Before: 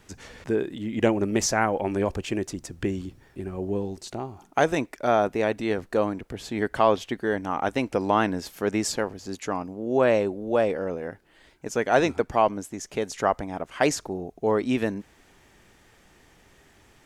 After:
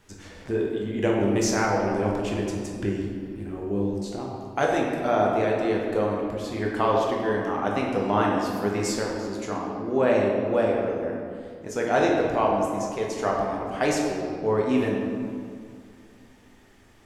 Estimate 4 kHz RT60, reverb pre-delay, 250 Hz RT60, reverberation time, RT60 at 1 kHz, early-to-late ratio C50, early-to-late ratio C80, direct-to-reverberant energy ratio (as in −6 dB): 1.3 s, 8 ms, 2.9 s, 2.3 s, 2.2 s, 1.0 dB, 2.5 dB, −2.5 dB